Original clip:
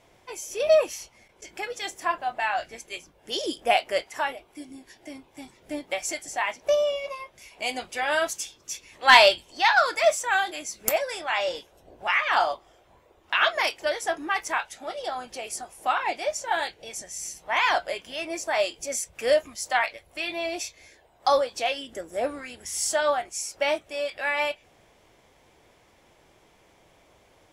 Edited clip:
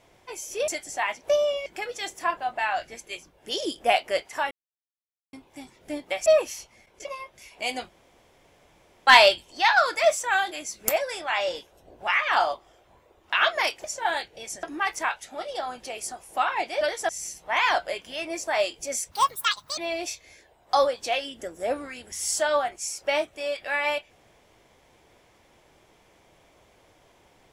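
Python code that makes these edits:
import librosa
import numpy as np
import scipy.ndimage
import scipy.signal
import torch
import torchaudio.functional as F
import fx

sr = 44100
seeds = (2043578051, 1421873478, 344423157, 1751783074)

y = fx.edit(x, sr, fx.swap(start_s=0.68, length_s=0.79, other_s=6.07, other_length_s=0.98),
    fx.silence(start_s=4.32, length_s=0.82),
    fx.room_tone_fill(start_s=7.89, length_s=1.18),
    fx.swap(start_s=13.84, length_s=0.28, other_s=16.3, other_length_s=0.79),
    fx.speed_span(start_s=19.11, length_s=1.2, speed=1.8), tone=tone)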